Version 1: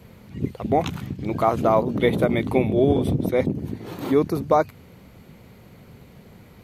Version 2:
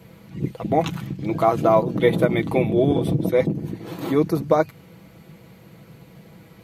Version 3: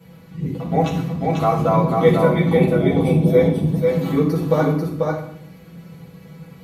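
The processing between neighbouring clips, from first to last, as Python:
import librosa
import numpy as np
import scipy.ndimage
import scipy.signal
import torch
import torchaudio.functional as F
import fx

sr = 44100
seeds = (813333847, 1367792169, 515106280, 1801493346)

y1 = scipy.signal.sosfilt(scipy.signal.butter(2, 62.0, 'highpass', fs=sr, output='sos'), x)
y1 = y1 + 0.53 * np.pad(y1, (int(6.1 * sr / 1000.0), 0))[:len(y1)]
y2 = y1 + 10.0 ** (-3.5 / 20.0) * np.pad(y1, (int(491 * sr / 1000.0), 0))[:len(y1)]
y2 = fx.rev_fdn(y2, sr, rt60_s=0.64, lf_ratio=1.5, hf_ratio=0.9, size_ms=36.0, drr_db=-6.0)
y2 = y2 * 10.0 ** (-7.0 / 20.0)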